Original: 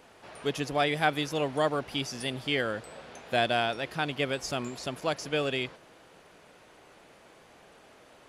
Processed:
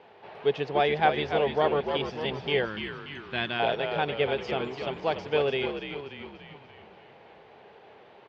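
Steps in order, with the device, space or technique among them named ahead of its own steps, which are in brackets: frequency-shifting delay pedal into a guitar cabinet (frequency-shifting echo 0.291 s, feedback 54%, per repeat -73 Hz, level -6.5 dB; speaker cabinet 98–3700 Hz, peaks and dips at 280 Hz -7 dB, 420 Hz +8 dB, 830 Hz +7 dB, 1300 Hz -4 dB); 2.65–3.6 band shelf 600 Hz -13 dB 1.2 oct

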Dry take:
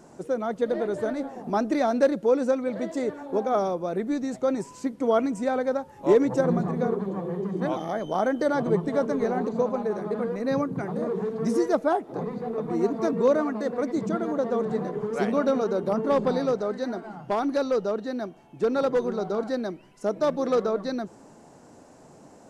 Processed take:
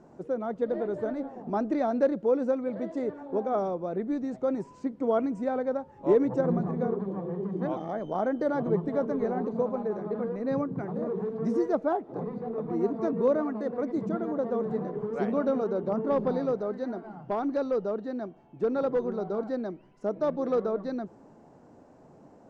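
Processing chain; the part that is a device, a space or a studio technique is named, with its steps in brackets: through cloth (LPF 6700 Hz 12 dB/oct; high shelf 2000 Hz -13 dB); gain -2.5 dB

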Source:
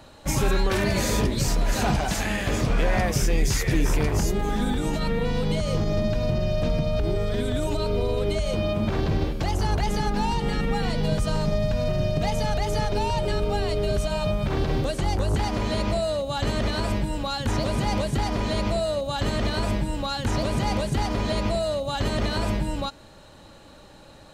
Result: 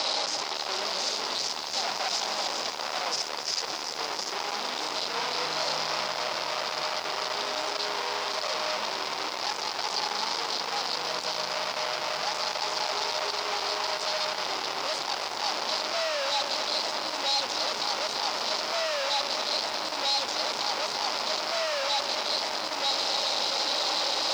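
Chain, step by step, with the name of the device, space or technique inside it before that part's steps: Chebyshev band-stop 810–3600 Hz, order 4; home computer beeper (infinite clipping; speaker cabinet 800–5700 Hz, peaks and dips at 940 Hz +3 dB, 1700 Hz -4 dB, 5000 Hz +8 dB); 5.12–6.03 doubler 32 ms -3 dB; lo-fi delay 0.272 s, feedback 80%, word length 8-bit, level -10.5 dB

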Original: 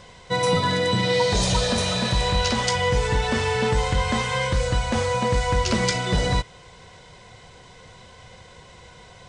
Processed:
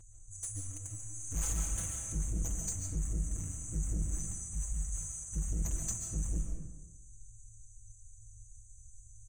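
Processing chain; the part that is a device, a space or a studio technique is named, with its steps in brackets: 4.34–5.36 passive tone stack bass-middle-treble 10-0-10; FFT band-reject 110–6000 Hz; saturation between pre-emphasis and de-emphasis (high shelf 9000 Hz +6 dB; soft clip -28.5 dBFS, distortion -7 dB; high shelf 9000 Hz -6 dB); comb 6 ms, depth 74%; digital reverb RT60 1.1 s, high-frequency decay 0.5×, pre-delay 0.1 s, DRR 2.5 dB; gain -2 dB

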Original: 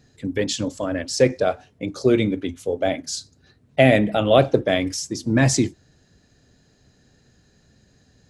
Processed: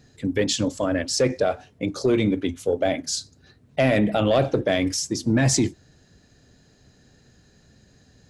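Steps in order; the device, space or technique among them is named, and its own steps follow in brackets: soft clipper into limiter (soft clip -7.5 dBFS, distortion -18 dB; limiter -14 dBFS, peak gain reduction 6 dB); gain +2 dB

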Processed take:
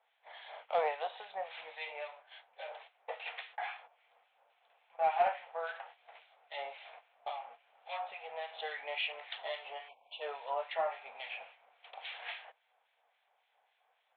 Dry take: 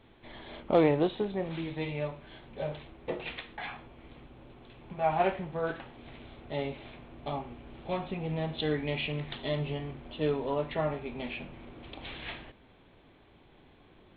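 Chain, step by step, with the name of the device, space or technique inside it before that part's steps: inverse Chebyshev high-pass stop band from 370 Hz, stop band 40 dB; 9.89–10.21 spectral delete 1100–2200 Hz; gate -54 dBFS, range -10 dB; 1.35–2.12 low shelf 160 Hz +9.5 dB; guitar amplifier with harmonic tremolo (harmonic tremolo 3.6 Hz, depth 70%, crossover 1600 Hz; soft clip -27 dBFS, distortion -19 dB; speaker cabinet 99–3600 Hz, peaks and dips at 470 Hz +10 dB, 730 Hz +6 dB, 1100 Hz -4 dB); gain +2.5 dB

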